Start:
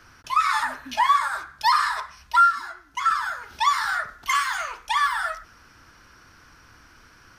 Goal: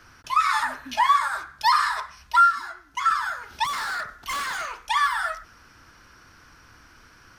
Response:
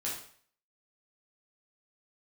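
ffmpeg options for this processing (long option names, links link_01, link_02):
-filter_complex "[0:a]asettb=1/sr,asplit=3[link_01][link_02][link_03];[link_01]atrim=end=3.644[link_04];[link_02]atrim=start=3.64:end=4.76,asetpts=PTS-STARTPTS,afade=type=in:duration=0.004:curve=qsin,afade=type=out:start_time=1.116:duration=0.004:curve=qsin,volume=26.5dB,asoftclip=hard,volume=-26.5dB[link_05];[link_03]atrim=start=4.756[link_06];[link_04][link_05]acrossfade=duration=0.004:curve1=hsin:curve2=qsin[link_07];[link_07][link_06]acrossfade=duration=0.004:curve1=qsin:curve2=hsin"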